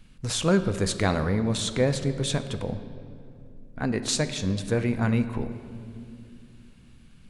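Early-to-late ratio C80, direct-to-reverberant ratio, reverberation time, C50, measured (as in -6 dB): 12.5 dB, 9.0 dB, 2.5 s, 11.5 dB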